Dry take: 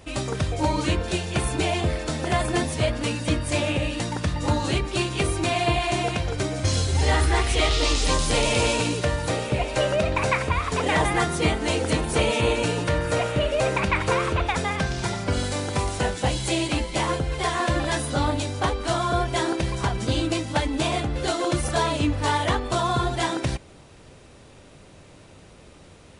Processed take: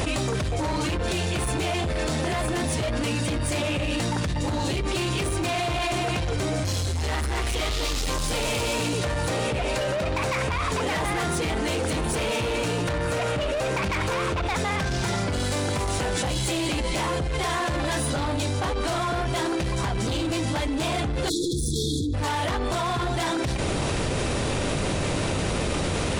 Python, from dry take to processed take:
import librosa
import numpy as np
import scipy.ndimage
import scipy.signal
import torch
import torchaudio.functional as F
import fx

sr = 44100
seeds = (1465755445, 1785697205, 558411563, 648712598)

y = fx.peak_eq(x, sr, hz=1300.0, db=-13.0, octaves=0.31, at=(4.27, 4.86))
y = 10.0 ** (-24.5 / 20.0) * np.tanh(y / 10.0 ** (-24.5 / 20.0))
y = fx.brickwall_bandstop(y, sr, low_hz=490.0, high_hz=3300.0, at=(21.28, 22.13), fade=0.02)
y = fx.env_flatten(y, sr, amount_pct=100)